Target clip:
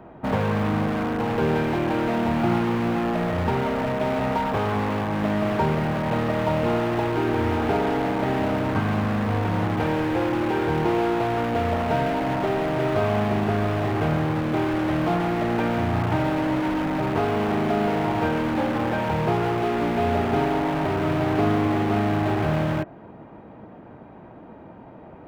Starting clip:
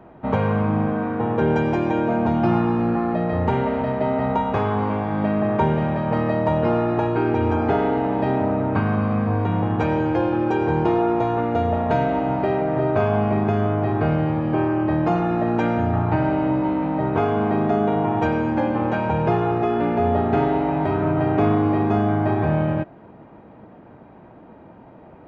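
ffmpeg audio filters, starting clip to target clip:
-filter_complex "[0:a]asplit=2[a][b];[b]aeval=exprs='(mod(10.6*val(0)+1,2)-1)/10.6':c=same,volume=-3.5dB[c];[a][c]amix=inputs=2:normalize=0,acrossover=split=3100[d][e];[e]acompressor=threshold=-48dB:ratio=4:attack=1:release=60[f];[d][f]amix=inputs=2:normalize=0,volume=-3dB"

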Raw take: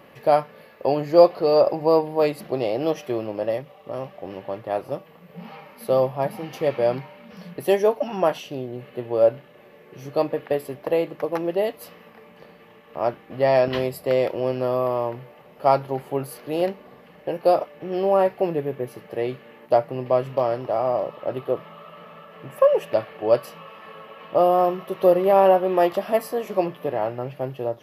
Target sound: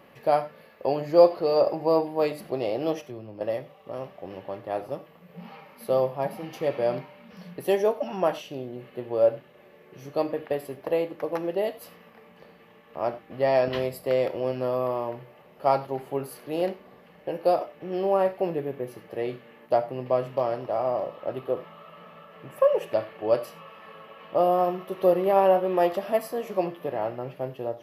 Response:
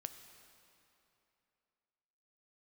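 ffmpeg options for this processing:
-filter_complex "[0:a]asettb=1/sr,asplit=3[a][b][c];[a]atrim=end=3.014[d];[b]atrim=start=3.01:end=3.41,asetpts=PTS-STARTPTS,afade=t=in:d=0.004:c=qsin,afade=t=out:st=0.396:d=0.004:c=qsin,acrossover=split=200[e][f];[f]acompressor=threshold=-57dB:ratio=1.5[g];[e][g]amix=inputs=2:normalize=0[h];[c]atrim=start=3.406[i];[d][h]acrossfade=d=0.004:c1=hsin:c2=qsin[j];[j][i]acrossfade=d=0.004:c1=qsin:c2=hsin[k];[1:a]atrim=start_sample=2205,afade=t=out:st=0.15:d=0.01,atrim=end_sample=7056[l];[k][l]afir=irnorm=-1:irlink=0"

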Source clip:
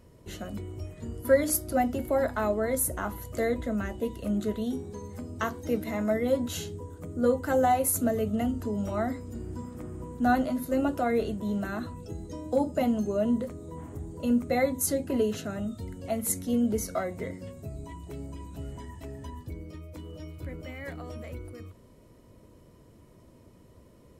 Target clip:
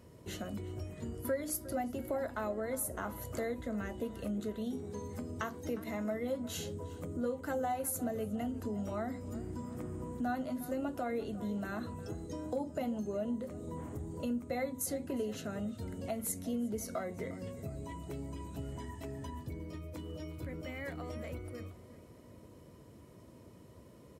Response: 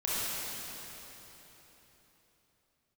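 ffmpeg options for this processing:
-filter_complex "[0:a]highpass=73,acompressor=threshold=-38dB:ratio=2.5,asplit=2[a][b];[b]adelay=357,lowpass=f=3.1k:p=1,volume=-16dB,asplit=2[c][d];[d]adelay=357,lowpass=f=3.1k:p=1,volume=0.52,asplit=2[e][f];[f]adelay=357,lowpass=f=3.1k:p=1,volume=0.52,asplit=2[g][h];[h]adelay=357,lowpass=f=3.1k:p=1,volume=0.52,asplit=2[i][j];[j]adelay=357,lowpass=f=3.1k:p=1,volume=0.52[k];[c][e][g][i][k]amix=inputs=5:normalize=0[l];[a][l]amix=inputs=2:normalize=0"

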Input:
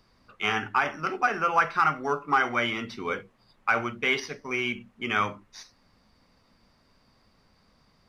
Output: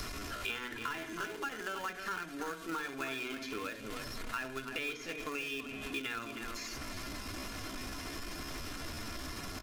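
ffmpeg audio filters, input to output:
-filter_complex "[0:a]aeval=exprs='val(0)+0.5*0.0168*sgn(val(0))':c=same,asetrate=49501,aresample=44100,atempo=0.890899,aresample=32000,aresample=44100,acrossover=split=460|3200[a][b][c];[a]acompressor=threshold=-41dB:ratio=4[d];[b]acompressor=threshold=-35dB:ratio=4[e];[c]acompressor=threshold=-47dB:ratio=4[f];[d][e][f]amix=inputs=3:normalize=0,asplit=2[g][h];[h]adelay=267,lowpass=f=2.9k:p=1,volume=-8dB,asplit=2[i][j];[j]adelay=267,lowpass=f=2.9k:p=1,volume=0.29,asplit=2[k][l];[l]adelay=267,lowpass=f=2.9k:p=1,volume=0.29[m];[g][i][k][m]amix=inputs=4:normalize=0,aeval=exprs='val(0)+0.002*(sin(2*PI*60*n/s)+sin(2*PI*2*60*n/s)/2+sin(2*PI*3*60*n/s)/3+sin(2*PI*4*60*n/s)/4+sin(2*PI*5*60*n/s)/5)':c=same,aecho=1:1:2.9:0.46,asplit=2[n][o];[o]acrusher=bits=4:mix=0:aa=0.000001,volume=-10dB[p];[n][p]amix=inputs=2:normalize=0,equalizer=f=780:t=o:w=0.83:g=-5,acompressor=threshold=-41dB:ratio=3,bandreject=f=60:t=h:w=6,bandreject=f=120:t=h:w=6,bandreject=f=180:t=h:w=6,bandreject=f=240:t=h:w=6,bandreject=f=300:t=h:w=6,bandreject=f=360:t=h:w=6,bandreject=f=420:t=h:w=6,atempo=0.84,volume=3dB"

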